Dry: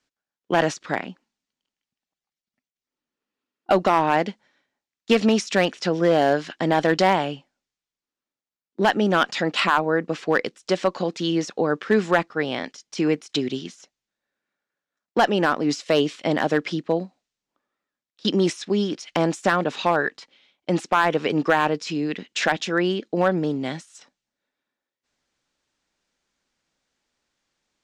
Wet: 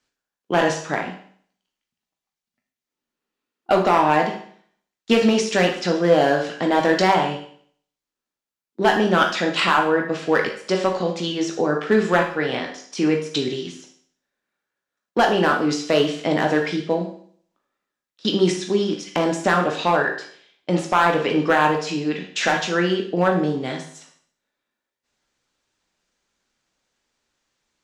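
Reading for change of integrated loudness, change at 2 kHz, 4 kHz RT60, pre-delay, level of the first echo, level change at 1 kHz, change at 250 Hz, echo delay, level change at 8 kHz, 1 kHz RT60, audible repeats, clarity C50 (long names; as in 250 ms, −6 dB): +2.0 dB, +2.5 dB, 0.55 s, 11 ms, no echo audible, +2.5 dB, +1.5 dB, no echo audible, +3.0 dB, 0.55 s, no echo audible, 6.5 dB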